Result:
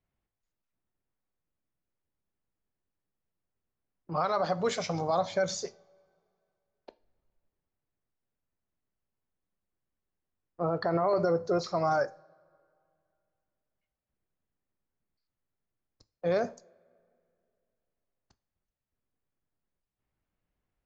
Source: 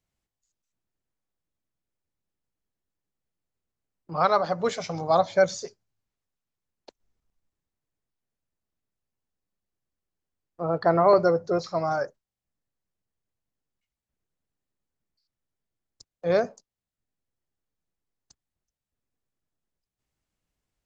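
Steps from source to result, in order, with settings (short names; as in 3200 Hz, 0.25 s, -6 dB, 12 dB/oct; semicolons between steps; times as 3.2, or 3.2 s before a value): limiter -19 dBFS, peak gain reduction 11.5 dB; two-slope reverb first 0.35 s, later 2.5 s, from -22 dB, DRR 14.5 dB; low-pass opened by the level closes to 2300 Hz, open at -26 dBFS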